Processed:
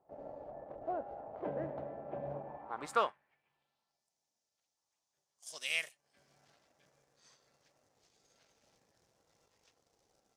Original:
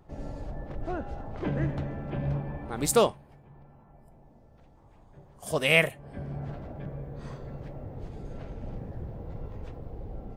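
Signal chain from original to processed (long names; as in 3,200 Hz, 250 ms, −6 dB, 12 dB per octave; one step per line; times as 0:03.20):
mu-law and A-law mismatch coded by A
band-pass filter sweep 650 Hz → 5,900 Hz, 0:02.42–0:04.08
level +2 dB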